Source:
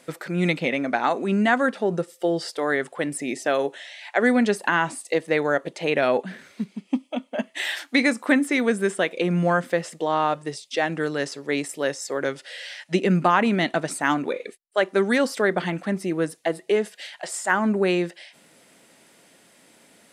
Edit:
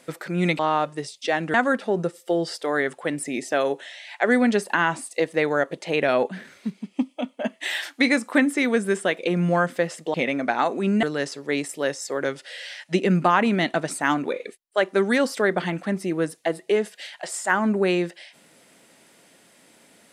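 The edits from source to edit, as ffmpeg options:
ffmpeg -i in.wav -filter_complex "[0:a]asplit=5[link_01][link_02][link_03][link_04][link_05];[link_01]atrim=end=0.592[link_06];[link_02]atrim=start=10.078:end=11.032[link_07];[link_03]atrim=start=1.478:end=10.082[link_08];[link_04]atrim=start=0.588:end=1.482[link_09];[link_05]atrim=start=11.028[link_10];[link_06][link_07]acrossfade=duration=0.004:curve1=hsin:curve2=hsin[link_11];[link_11][link_08]acrossfade=duration=0.004:curve1=hsin:curve2=hsin[link_12];[link_12][link_09]acrossfade=duration=0.004:curve1=hsin:curve2=hsin[link_13];[link_13][link_10]acrossfade=duration=0.004:curve1=hsin:curve2=hsin" out.wav

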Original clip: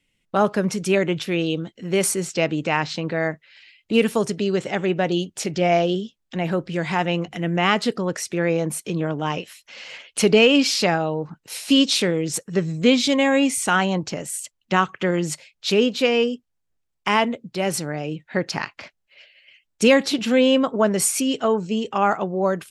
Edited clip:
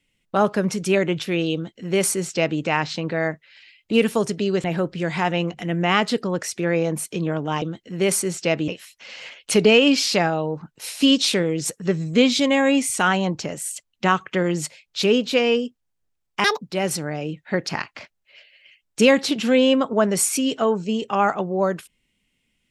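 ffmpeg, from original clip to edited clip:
ffmpeg -i in.wav -filter_complex "[0:a]asplit=6[link_01][link_02][link_03][link_04][link_05][link_06];[link_01]atrim=end=4.642[link_07];[link_02]atrim=start=6.378:end=9.362[link_08];[link_03]atrim=start=1.538:end=2.602[link_09];[link_04]atrim=start=9.358:end=17.124[link_10];[link_05]atrim=start=17.12:end=17.44,asetpts=PTS-STARTPTS,asetrate=81144,aresample=44100[link_11];[link_06]atrim=start=17.436[link_12];[link_07][link_08]acrossfade=duration=0.004:curve1=hsin:curve2=hsin[link_13];[link_13][link_09]acrossfade=duration=0.004:curve1=hsin:curve2=hsin[link_14];[link_14][link_10]acrossfade=duration=0.004:curve1=hsin:curve2=hsin[link_15];[link_15][link_11]acrossfade=duration=0.004:curve1=hsin:curve2=hsin[link_16];[link_16][link_12]acrossfade=duration=0.004:curve1=hsin:curve2=hsin" out.wav

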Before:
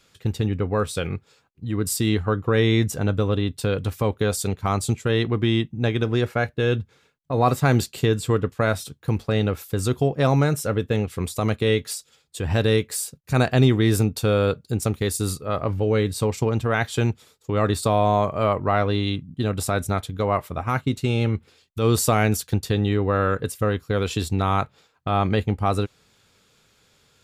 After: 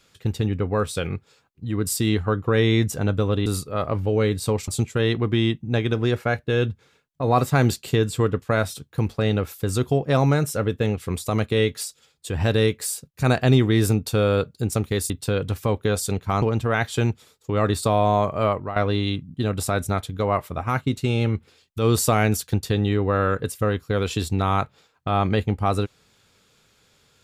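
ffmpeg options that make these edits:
ffmpeg -i in.wav -filter_complex "[0:a]asplit=6[link_01][link_02][link_03][link_04][link_05][link_06];[link_01]atrim=end=3.462[link_07];[link_02]atrim=start=15.198:end=16.422[link_08];[link_03]atrim=start=4.778:end=15.202[link_09];[link_04]atrim=start=3.458:end=4.782[link_10];[link_05]atrim=start=16.418:end=18.76,asetpts=PTS-STARTPTS,afade=type=out:start_time=2.052:duration=0.29:silence=0.199526[link_11];[link_06]atrim=start=18.76,asetpts=PTS-STARTPTS,afade=type=in:duration=0.004:curve=hsin:silence=0.199526[link_12];[link_07][link_08]acrossfade=duration=0.004:curve1=hsin:curve2=hsin[link_13];[link_13][link_09]acrossfade=duration=0.004:curve1=hsin:curve2=hsin[link_14];[link_14][link_10]acrossfade=duration=0.004:curve1=hsin:curve2=hsin[link_15];[link_11][link_12]concat=n=2:v=0:a=1[link_16];[link_15][link_16]acrossfade=duration=0.004:curve1=hsin:curve2=hsin" out.wav

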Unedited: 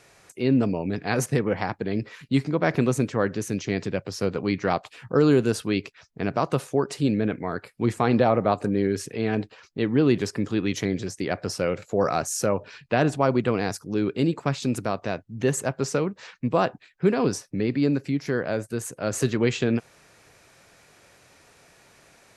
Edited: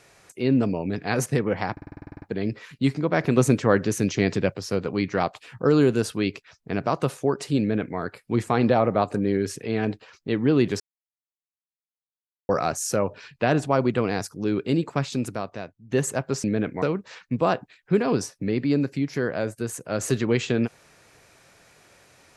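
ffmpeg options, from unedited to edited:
ffmpeg -i in.wav -filter_complex "[0:a]asplit=18[link_01][link_02][link_03][link_04][link_05][link_06][link_07][link_08][link_09][link_10][link_11][link_12][link_13][link_14][link_15][link_16][link_17][link_18];[link_01]atrim=end=1.772[link_19];[link_02]atrim=start=1.718:end=1.772[link_20];[link_03]atrim=start=1.718:end=1.772[link_21];[link_04]atrim=start=1.718:end=1.772[link_22];[link_05]atrim=start=1.718:end=1.772[link_23];[link_06]atrim=start=1.718:end=1.772[link_24];[link_07]atrim=start=1.718:end=1.772[link_25];[link_08]atrim=start=1.718:end=1.772[link_26];[link_09]atrim=start=1.718:end=1.772[link_27];[link_10]atrim=start=1.718:end=1.772[link_28];[link_11]atrim=start=1.718:end=2.872[link_29];[link_12]atrim=start=2.868:end=4.042,asetpts=PTS-STARTPTS,volume=4.5dB[link_30];[link_13]atrim=start=4.038:end=10.3,asetpts=PTS-STARTPTS,afade=type=out:start_time=6.258:duration=0.004:curve=hsin[link_31];[link_14]atrim=start=10.3:end=11.99,asetpts=PTS-STARTPTS,volume=0[link_32];[link_15]atrim=start=11.99:end=15.42,asetpts=PTS-STARTPTS,afade=type=in:duration=0.004:curve=hsin,afade=type=out:start_time=2.54:duration=0.89:silence=0.188365[link_33];[link_16]atrim=start=15.42:end=15.942,asetpts=PTS-STARTPTS,afade=type=in:duration=0.004:curve=hsin:silence=0.188365[link_34];[link_17]atrim=start=7.098:end=7.482[link_35];[link_18]atrim=start=15.938[link_36];[link_19][link_20]acrossfade=duration=0.004:curve1=hsin:curve2=hsin[link_37];[link_37][link_21]acrossfade=duration=0.004:curve1=hsin:curve2=hsin[link_38];[link_38][link_22]acrossfade=duration=0.004:curve1=hsin:curve2=hsin[link_39];[link_39][link_23]acrossfade=duration=0.004:curve1=hsin:curve2=hsin[link_40];[link_40][link_24]acrossfade=duration=0.004:curve1=hsin:curve2=hsin[link_41];[link_41][link_25]acrossfade=duration=0.004:curve1=hsin:curve2=hsin[link_42];[link_42][link_26]acrossfade=duration=0.004:curve1=hsin:curve2=hsin[link_43];[link_43][link_27]acrossfade=duration=0.004:curve1=hsin:curve2=hsin[link_44];[link_44][link_28]acrossfade=duration=0.004:curve1=hsin:curve2=hsin[link_45];[link_45][link_29]acrossfade=duration=0.004:curve1=hsin:curve2=hsin[link_46];[link_46][link_30]acrossfade=duration=0.004:curve1=hsin:curve2=hsin[link_47];[link_31][link_32][link_33][link_34]concat=n=4:v=0:a=1[link_48];[link_47][link_48]acrossfade=duration=0.004:curve1=hsin:curve2=hsin[link_49];[link_49][link_35]acrossfade=duration=0.004:curve1=hsin:curve2=hsin[link_50];[link_50][link_36]acrossfade=duration=0.004:curve1=hsin:curve2=hsin" out.wav

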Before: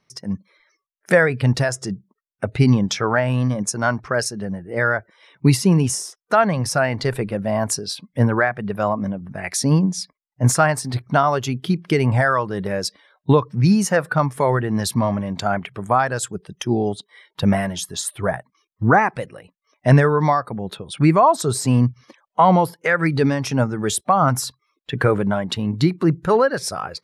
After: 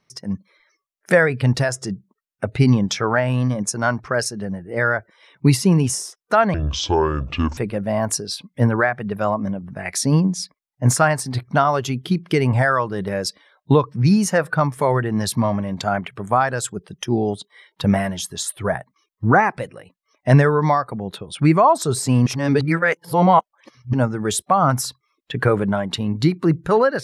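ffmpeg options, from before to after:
ffmpeg -i in.wav -filter_complex "[0:a]asplit=5[link_01][link_02][link_03][link_04][link_05];[link_01]atrim=end=6.544[link_06];[link_02]atrim=start=6.54:end=7.16,asetpts=PTS-STARTPTS,asetrate=26460,aresample=44100[link_07];[link_03]atrim=start=7.156:end=21.852[link_08];[link_04]atrim=start=21.848:end=23.522,asetpts=PTS-STARTPTS,areverse[link_09];[link_05]atrim=start=23.518[link_10];[link_06][link_07]acrossfade=duration=0.004:curve1=hsin:curve2=hsin[link_11];[link_11][link_08]acrossfade=duration=0.004:curve1=hsin:curve2=hsin[link_12];[link_12][link_09]acrossfade=duration=0.004:curve1=hsin:curve2=hsin[link_13];[link_13][link_10]acrossfade=duration=0.004:curve1=hsin:curve2=hsin" out.wav

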